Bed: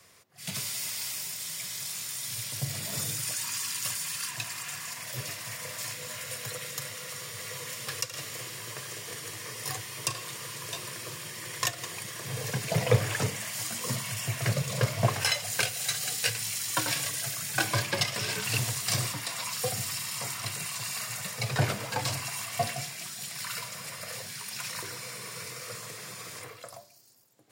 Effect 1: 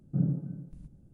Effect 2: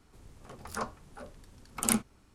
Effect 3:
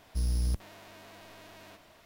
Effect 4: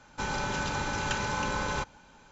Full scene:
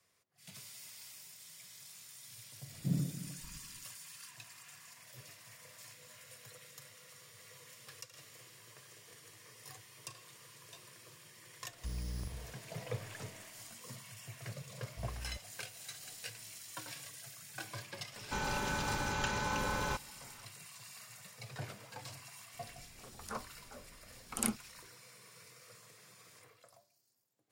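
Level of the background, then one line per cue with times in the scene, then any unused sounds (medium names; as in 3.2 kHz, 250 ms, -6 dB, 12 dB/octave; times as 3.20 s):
bed -17.5 dB
2.71 s: add 1 -6 dB
11.69 s: add 3 -9 dB + reverse bouncing-ball echo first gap 40 ms, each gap 1.2×, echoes 5
14.82 s: add 3 -16.5 dB
18.13 s: add 4 -4.5 dB
22.54 s: add 2 -7 dB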